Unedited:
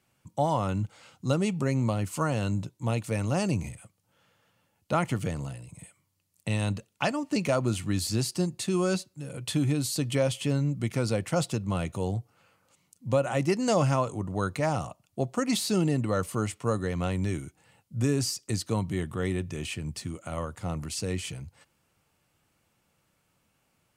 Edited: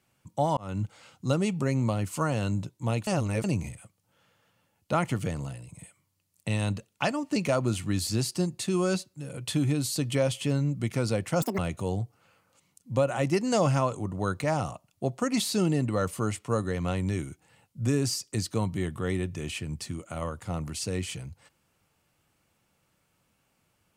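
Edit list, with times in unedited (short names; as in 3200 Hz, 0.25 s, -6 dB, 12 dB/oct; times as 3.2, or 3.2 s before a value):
0.57–0.82 fade in
3.07–3.44 reverse
11.42–11.74 speed 195%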